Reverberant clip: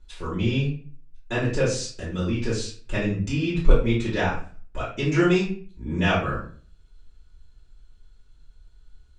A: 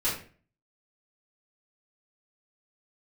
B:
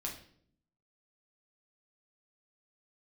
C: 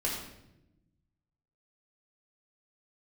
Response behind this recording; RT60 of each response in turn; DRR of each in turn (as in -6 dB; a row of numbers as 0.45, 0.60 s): A; 0.40, 0.60, 0.90 s; -9.5, -2.0, -4.5 dB